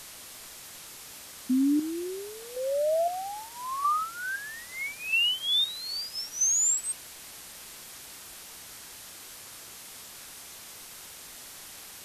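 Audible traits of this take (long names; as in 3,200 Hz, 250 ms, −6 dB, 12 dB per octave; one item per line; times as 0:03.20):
phaser sweep stages 8, 0.73 Hz, lowest notch 560–2,900 Hz
chopped level 0.78 Hz, depth 65%, duty 40%
a quantiser's noise floor 8 bits, dither triangular
Ogg Vorbis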